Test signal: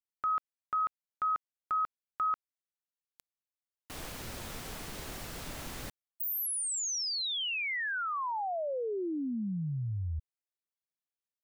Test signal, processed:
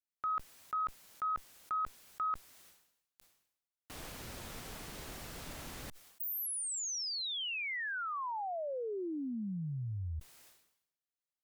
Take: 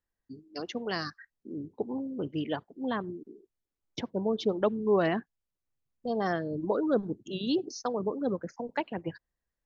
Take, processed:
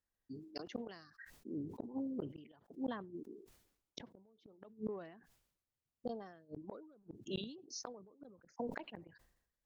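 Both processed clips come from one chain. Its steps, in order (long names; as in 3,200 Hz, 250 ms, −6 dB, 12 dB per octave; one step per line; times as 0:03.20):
harmonic generator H 5 −34 dB, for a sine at −13.5 dBFS
gate with flip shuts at −24 dBFS, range −37 dB
level that may fall only so fast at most 75 dB per second
level −5 dB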